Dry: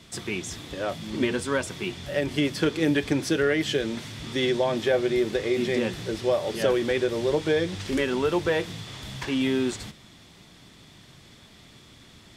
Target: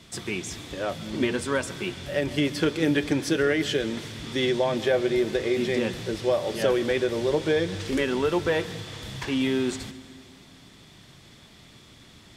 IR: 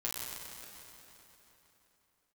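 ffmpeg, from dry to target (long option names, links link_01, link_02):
-filter_complex "[0:a]asplit=2[link_01][link_02];[1:a]atrim=start_sample=2205,asetrate=70560,aresample=44100,adelay=132[link_03];[link_02][link_03]afir=irnorm=-1:irlink=0,volume=-15.5dB[link_04];[link_01][link_04]amix=inputs=2:normalize=0"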